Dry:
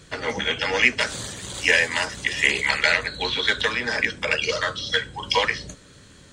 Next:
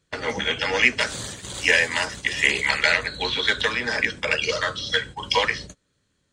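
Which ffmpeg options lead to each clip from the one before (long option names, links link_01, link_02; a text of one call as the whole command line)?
ffmpeg -i in.wav -af "agate=range=-22dB:threshold=-35dB:ratio=16:detection=peak" out.wav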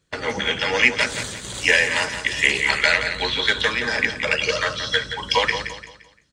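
ffmpeg -i in.wav -af "aecho=1:1:173|346|519|692:0.335|0.117|0.041|0.0144,volume=1.5dB" out.wav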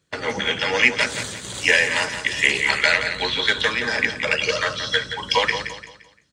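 ffmpeg -i in.wav -af "highpass=72" out.wav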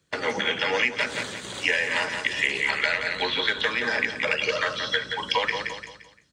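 ffmpeg -i in.wav -filter_complex "[0:a]acrossover=split=180|4000[link_01][link_02][link_03];[link_01]acompressor=threshold=-52dB:ratio=4[link_04];[link_02]acompressor=threshold=-21dB:ratio=4[link_05];[link_03]acompressor=threshold=-44dB:ratio=4[link_06];[link_04][link_05][link_06]amix=inputs=3:normalize=0" out.wav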